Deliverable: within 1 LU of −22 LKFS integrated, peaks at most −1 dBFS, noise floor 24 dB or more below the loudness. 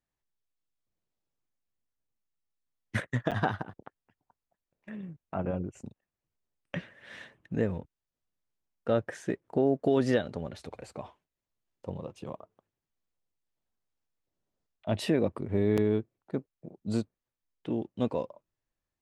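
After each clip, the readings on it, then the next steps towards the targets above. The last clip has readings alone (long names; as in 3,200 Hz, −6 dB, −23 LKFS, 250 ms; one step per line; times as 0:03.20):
number of dropouts 2; longest dropout 7.4 ms; integrated loudness −32.0 LKFS; sample peak −12.0 dBFS; target loudness −22.0 LKFS
→ repair the gap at 0:03.31/0:15.77, 7.4 ms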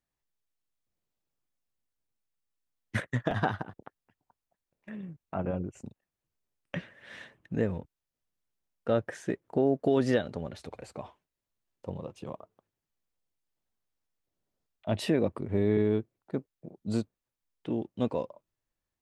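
number of dropouts 0; integrated loudness −32.0 LKFS; sample peak −12.0 dBFS; target loudness −22.0 LKFS
→ level +10 dB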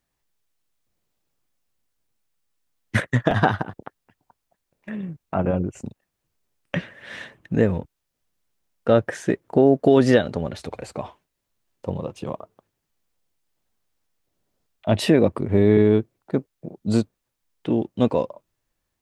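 integrated loudness −22.0 LKFS; sample peak −2.0 dBFS; background noise floor −79 dBFS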